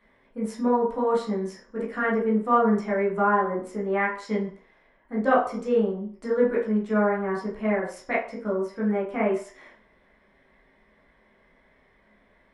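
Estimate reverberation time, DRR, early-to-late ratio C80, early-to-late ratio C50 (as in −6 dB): 0.45 s, −6.5 dB, 10.5 dB, 5.5 dB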